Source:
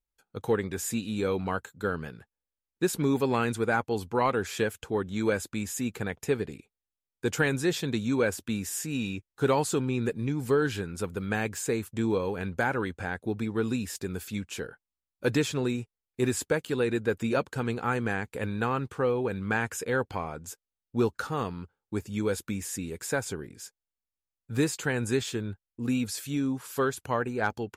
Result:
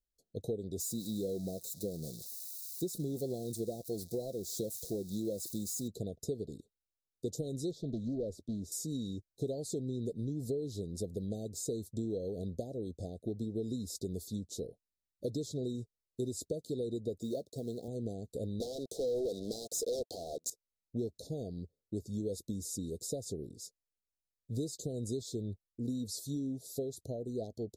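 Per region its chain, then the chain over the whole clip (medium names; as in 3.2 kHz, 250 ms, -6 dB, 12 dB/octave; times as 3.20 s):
0.80–5.88 s: zero-crossing glitches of -29.5 dBFS + band-stop 3 kHz, Q 8.6 + comb 5.8 ms, depth 36%
7.71–8.72 s: low-pass 1.9 kHz 6 dB/octave + valve stage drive 20 dB, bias 0.4 + loudspeaker Doppler distortion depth 0.17 ms
17.21–17.88 s: high-pass 84 Hz 6 dB/octave + bass shelf 180 Hz -7 dB + companded quantiser 6-bit
18.60–20.50 s: high-pass 510 Hz + waveshaping leveller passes 5
whole clip: compression, threshold -31 dBFS; Chebyshev band-stop 670–3800 Hz, order 5; treble shelf 9.8 kHz -5 dB; trim -1.5 dB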